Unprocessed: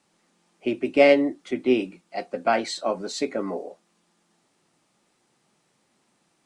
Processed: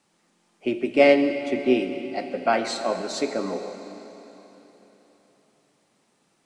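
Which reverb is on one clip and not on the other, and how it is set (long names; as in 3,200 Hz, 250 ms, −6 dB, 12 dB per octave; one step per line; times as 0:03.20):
comb and all-pass reverb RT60 3.8 s, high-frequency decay 0.95×, pre-delay 10 ms, DRR 7.5 dB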